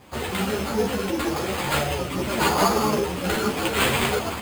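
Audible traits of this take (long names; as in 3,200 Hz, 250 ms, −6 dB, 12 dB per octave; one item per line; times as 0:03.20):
aliases and images of a low sample rate 5,700 Hz, jitter 0%
a shimmering, thickened sound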